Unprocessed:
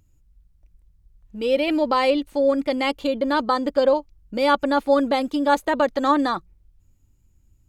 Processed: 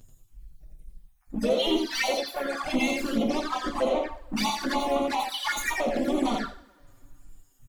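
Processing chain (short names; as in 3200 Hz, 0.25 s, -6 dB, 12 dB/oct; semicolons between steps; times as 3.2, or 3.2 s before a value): random spectral dropouts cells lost 59%; high shelf 4100 Hz +8 dB; notch 5900 Hz, Q 16; in parallel at +2.5 dB: compressor 6:1, threshold -27 dBFS, peak gain reduction 13 dB; on the sum: limiter -13.5 dBFS, peak gain reduction 7.5 dB; soft clip -24 dBFS, distortion -9 dB; two-slope reverb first 0.41 s, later 2.4 s, from -28 dB, DRR 0.5 dB; harmoniser -5 st -17 dB, +4 st -6 dB; on a send: echo 87 ms -4 dB; on the sum: envelope flanger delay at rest 9.2 ms, full sweep at -20 dBFS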